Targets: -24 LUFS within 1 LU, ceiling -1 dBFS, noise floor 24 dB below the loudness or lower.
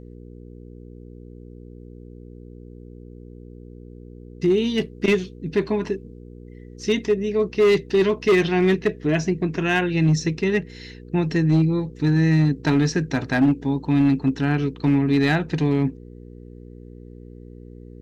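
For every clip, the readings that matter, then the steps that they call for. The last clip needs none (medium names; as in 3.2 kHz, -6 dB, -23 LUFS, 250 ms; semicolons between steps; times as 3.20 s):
clipped samples 1.2%; clipping level -12.0 dBFS; hum 60 Hz; highest harmonic 480 Hz; hum level -41 dBFS; loudness -21.0 LUFS; peak level -12.0 dBFS; loudness target -24.0 LUFS
-> clip repair -12 dBFS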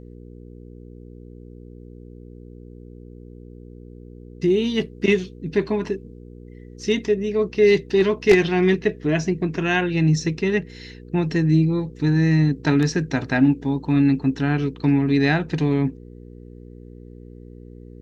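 clipped samples 0.0%; hum 60 Hz; highest harmonic 480 Hz; hum level -40 dBFS
-> de-hum 60 Hz, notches 8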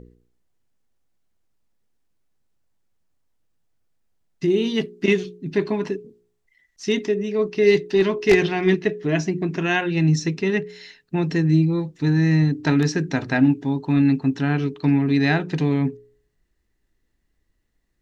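hum not found; loudness -21.0 LUFS; peak level -3.5 dBFS; loudness target -24.0 LUFS
-> trim -3 dB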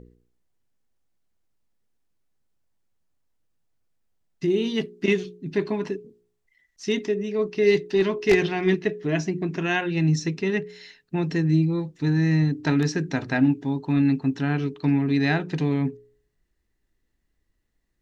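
loudness -24.0 LUFS; peak level -6.5 dBFS; noise floor -74 dBFS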